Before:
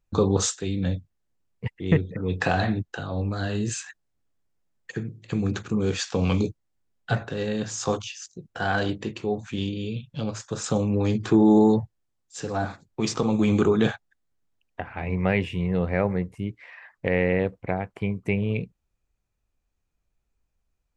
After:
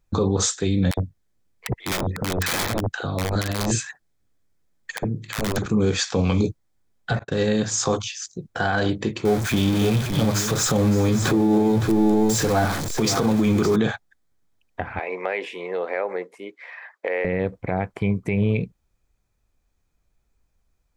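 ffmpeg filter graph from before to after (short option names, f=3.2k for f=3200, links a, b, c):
-filter_complex "[0:a]asettb=1/sr,asplit=3[a][b][c];[a]atrim=end=0.914[d];[b]atrim=start=0.91:end=5.66,asetpts=PTS-STARTPTS,afade=t=in:d=0.004:c=qsin,afade=t=out:st=4.746:d=0.004:c=qsin,aeval=exprs='(mod(9.44*val(0)+1,2)-1)/9.44':c=same,acrossover=split=890[e][f];[e]adelay=60[g];[g][f]amix=inputs=2:normalize=0,atrim=end_sample=209475[h];[c]atrim=start=5.656[i];[d][h]acrossfade=d=0.004:c1=hsin:c2=qsin[j];[j][i]acrossfade=d=0.004:c1=qsin:c2=hsin,asettb=1/sr,asplit=3[k][l][m];[k]atrim=end=7.194[n];[l]atrim=start=7.19:end=7.81,asetpts=PTS-STARTPTS,afade=t=in:d=0.004:c=qsin,afade=t=out:st=0.616:d=0.004:c=qsin,agate=range=-40dB:threshold=-37dB:ratio=16:release=100:detection=peak,highshelf=f=6.2k:g=4[o];[m]atrim=start=7.806[p];[n][o]acrossfade=d=0.004:c1=hsin:c2=qsin[q];[q][p]acrossfade=d=0.004:c1=qsin:c2=hsin,asettb=1/sr,asplit=3[r][s][t];[r]atrim=end=9.254[u];[s]atrim=start=9.25:end=13.76,asetpts=PTS-STARTPTS,afade=t=in:d=0.004:c=qsin,afade=t=out:st=4.506:d=0.004:c=qsin,aeval=exprs='val(0)+0.5*0.0355*sgn(val(0))':c=same,aecho=1:1:564:0.355,atrim=end_sample=198891[v];[t]atrim=start=13.756[w];[u][v]acrossfade=d=0.004:c1=hsin:c2=qsin[x];[x][w]acrossfade=d=0.004:c1=qsin:c2=hsin,asettb=1/sr,asplit=3[y][z][aa];[y]atrim=end=14.994[ab];[z]atrim=start=14.99:end=17.25,asetpts=PTS-STARTPTS,afade=t=in:d=0.004:c=qsin,afade=t=out:st=2.256:d=0.004:c=qsin,highpass=f=400:w=0.5412,highpass=f=400:w=1.3066,highshelf=f=4.6k:g=-6,acompressor=threshold=-29dB:ratio=3:attack=3.2:release=140:knee=1:detection=peak[ac];[aa]atrim=start=17.246[ad];[ab][ac]acrossfade=d=0.004:c1=hsin:c2=qsin[ae];[ae][ad]acrossfade=d=0.004:c1=qsin:c2=hsin,bandreject=f=2.8k:w=10,alimiter=limit=-18.5dB:level=0:latency=1:release=88,volume=7dB"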